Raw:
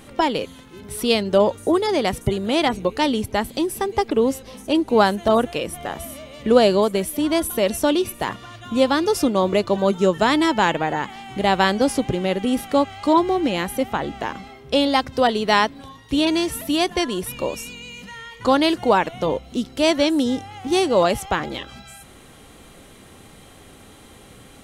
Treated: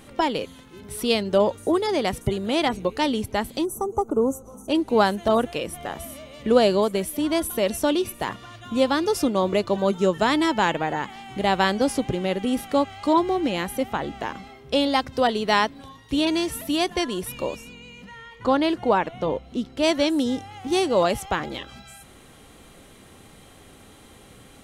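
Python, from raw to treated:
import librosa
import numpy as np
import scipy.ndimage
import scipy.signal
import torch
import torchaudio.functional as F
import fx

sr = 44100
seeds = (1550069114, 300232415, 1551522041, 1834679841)

y = fx.spec_box(x, sr, start_s=3.65, length_s=1.04, low_hz=1500.0, high_hz=5800.0, gain_db=-27)
y = fx.high_shelf(y, sr, hz=fx.line((17.55, 2800.0), (19.82, 5300.0)), db=-11.0, at=(17.55, 19.82), fade=0.02)
y = y * 10.0 ** (-3.0 / 20.0)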